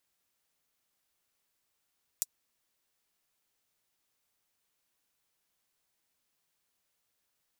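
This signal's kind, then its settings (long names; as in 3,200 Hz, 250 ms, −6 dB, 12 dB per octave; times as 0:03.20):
closed synth hi-hat, high-pass 6,500 Hz, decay 0.04 s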